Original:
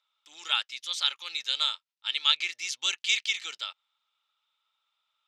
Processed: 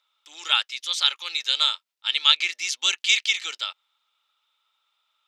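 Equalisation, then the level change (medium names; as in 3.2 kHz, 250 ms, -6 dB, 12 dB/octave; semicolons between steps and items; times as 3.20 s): high-pass 260 Hz 24 dB/octave; +6.0 dB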